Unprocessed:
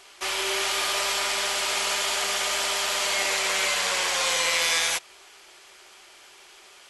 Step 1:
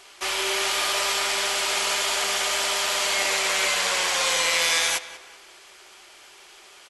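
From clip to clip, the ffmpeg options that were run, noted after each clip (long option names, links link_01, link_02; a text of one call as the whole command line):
ffmpeg -i in.wav -filter_complex "[0:a]asplit=2[link_01][link_02];[link_02]adelay=190,lowpass=frequency=3700:poles=1,volume=-15dB,asplit=2[link_03][link_04];[link_04]adelay=190,lowpass=frequency=3700:poles=1,volume=0.4,asplit=2[link_05][link_06];[link_06]adelay=190,lowpass=frequency=3700:poles=1,volume=0.4,asplit=2[link_07][link_08];[link_08]adelay=190,lowpass=frequency=3700:poles=1,volume=0.4[link_09];[link_01][link_03][link_05][link_07][link_09]amix=inputs=5:normalize=0,volume=1.5dB" out.wav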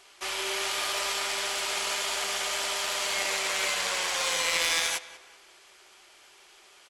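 ffmpeg -i in.wav -af "aeval=exprs='0.398*(cos(1*acos(clip(val(0)/0.398,-1,1)))-cos(1*PI/2))+0.0708*(cos(3*acos(clip(val(0)/0.398,-1,1)))-cos(3*PI/2))':channel_layout=same" out.wav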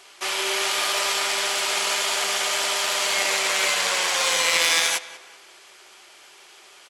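ffmpeg -i in.wav -af "highpass=frequency=140:poles=1,volume=6.5dB" out.wav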